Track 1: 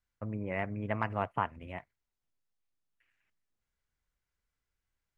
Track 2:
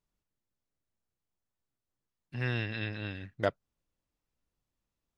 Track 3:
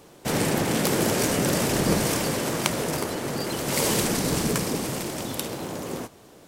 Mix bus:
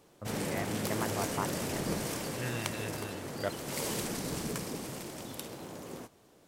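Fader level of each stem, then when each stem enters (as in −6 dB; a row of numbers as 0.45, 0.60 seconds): −4.0, −5.5, −11.5 decibels; 0.00, 0.00, 0.00 seconds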